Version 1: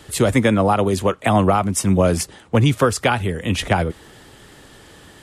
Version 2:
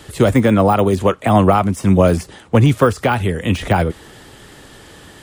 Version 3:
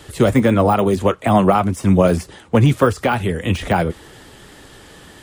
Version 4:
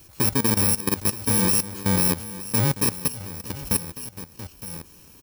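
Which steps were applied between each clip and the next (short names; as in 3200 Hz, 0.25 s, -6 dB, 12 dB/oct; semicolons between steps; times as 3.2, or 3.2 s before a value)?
de-esser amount 70%; gain +4 dB
flange 1.7 Hz, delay 1.8 ms, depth 4.1 ms, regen -65%; gain +3 dB
FFT order left unsorted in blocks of 64 samples; echo 0.92 s -10 dB; level quantiser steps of 15 dB; gain -4.5 dB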